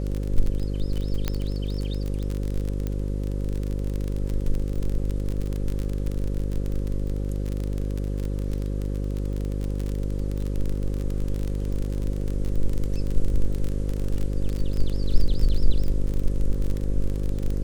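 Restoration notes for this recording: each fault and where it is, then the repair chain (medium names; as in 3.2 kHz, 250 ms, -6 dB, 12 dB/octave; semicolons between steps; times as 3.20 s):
buzz 50 Hz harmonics 11 -27 dBFS
crackle 31 per s -25 dBFS
1.28 s: pop -10 dBFS
2.87 s: pop -17 dBFS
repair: de-click; de-hum 50 Hz, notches 11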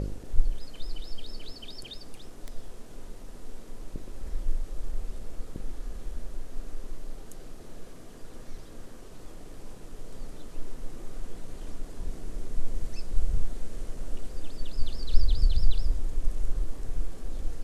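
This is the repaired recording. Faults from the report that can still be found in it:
nothing left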